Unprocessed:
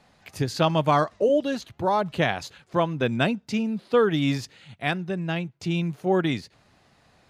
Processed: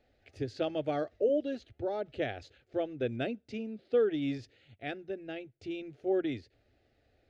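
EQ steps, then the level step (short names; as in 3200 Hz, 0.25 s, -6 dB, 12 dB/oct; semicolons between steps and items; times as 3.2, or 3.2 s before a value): tape spacing loss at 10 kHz 25 dB; low shelf 130 Hz +3.5 dB; fixed phaser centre 420 Hz, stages 4; -5.0 dB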